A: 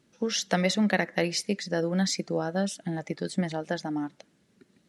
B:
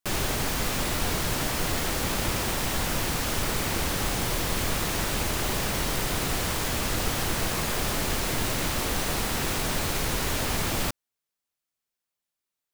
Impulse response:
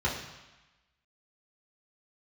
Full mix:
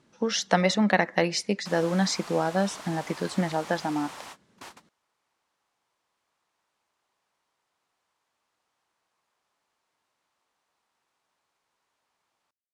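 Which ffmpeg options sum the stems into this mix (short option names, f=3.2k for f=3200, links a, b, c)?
-filter_complex "[0:a]volume=1dB,asplit=2[a][b];[1:a]highpass=f=650:p=1,acontrast=49,adelay=1600,volume=-19.5dB[c];[b]apad=whole_len=632125[d];[c][d]sidechaingate=range=-36dB:threshold=-58dB:ratio=16:detection=peak[e];[a][e]amix=inputs=2:normalize=0,lowpass=8.9k,equalizer=f=980:t=o:w=1:g=8"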